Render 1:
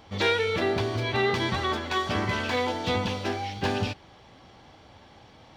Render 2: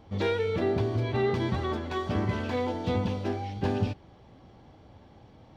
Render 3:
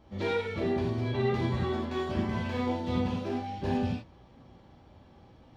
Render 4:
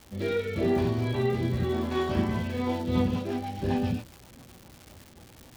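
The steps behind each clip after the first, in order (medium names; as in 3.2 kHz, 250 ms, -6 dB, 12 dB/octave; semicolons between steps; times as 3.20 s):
tilt shelf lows +7 dB, about 790 Hz; trim -4.5 dB
gated-style reverb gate 120 ms flat, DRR -4 dB; trim -7 dB
rotary cabinet horn 0.85 Hz, later 7.5 Hz, at 2.40 s; crackle 310 per s -42 dBFS; trim +4.5 dB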